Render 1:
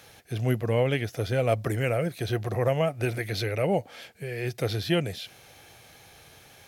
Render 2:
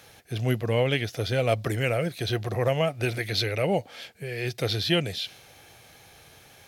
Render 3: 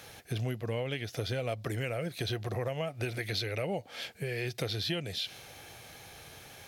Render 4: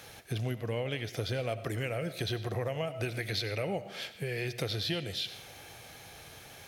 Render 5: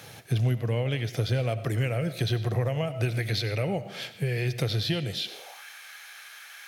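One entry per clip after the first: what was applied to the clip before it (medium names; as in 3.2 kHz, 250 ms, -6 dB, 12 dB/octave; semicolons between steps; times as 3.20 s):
dynamic bell 3.9 kHz, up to +8 dB, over -50 dBFS, Q 0.99
compression, threshold -33 dBFS, peak gain reduction 14 dB; trim +2 dB
algorithmic reverb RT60 0.67 s, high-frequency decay 0.75×, pre-delay 50 ms, DRR 12.5 dB
high-pass sweep 120 Hz -> 1.5 kHz, 5.11–5.65 s; trim +3 dB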